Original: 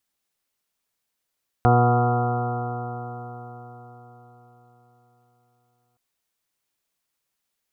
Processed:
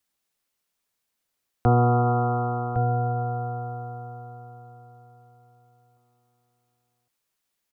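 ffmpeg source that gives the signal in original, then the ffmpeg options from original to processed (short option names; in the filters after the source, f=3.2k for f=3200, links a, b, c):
-f lavfi -i "aevalsrc='0.158*pow(10,-3*t/4.55)*sin(2*PI*120.06*t)+0.0708*pow(10,-3*t/4.55)*sin(2*PI*240.44*t)+0.0501*pow(10,-3*t/4.55)*sin(2*PI*361.49*t)+0.075*pow(10,-3*t/4.55)*sin(2*PI*483.52*t)+0.0178*pow(10,-3*t/4.55)*sin(2*PI*606.86*t)+0.141*pow(10,-3*t/4.55)*sin(2*PI*731.83*t)+0.0237*pow(10,-3*t/4.55)*sin(2*PI*858.72*t)+0.0376*pow(10,-3*t/4.55)*sin(2*PI*987.86*t)+0.0224*pow(10,-3*t/4.55)*sin(2*PI*1119.52*t)+0.0422*pow(10,-3*t/4.55)*sin(2*PI*1253.99*t)+0.0376*pow(10,-3*t/4.55)*sin(2*PI*1391.53*t)':d=4.32:s=44100"
-filter_complex "[0:a]acrossover=split=140|570[a][b][c];[c]alimiter=limit=-20.5dB:level=0:latency=1:release=66[d];[a][b][d]amix=inputs=3:normalize=0,asplit=2[e][f];[f]adelay=1108,volume=-7dB,highshelf=f=4k:g=-24.9[g];[e][g]amix=inputs=2:normalize=0"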